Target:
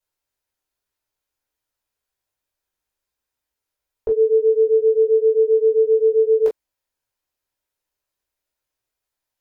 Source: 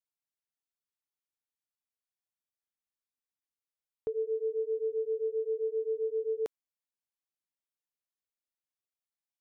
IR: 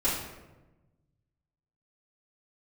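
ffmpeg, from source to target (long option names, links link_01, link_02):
-filter_complex "[1:a]atrim=start_sample=2205,atrim=end_sample=3969,asetrate=79380,aresample=44100[link_01];[0:a][link_01]afir=irnorm=-1:irlink=0,volume=7.5dB"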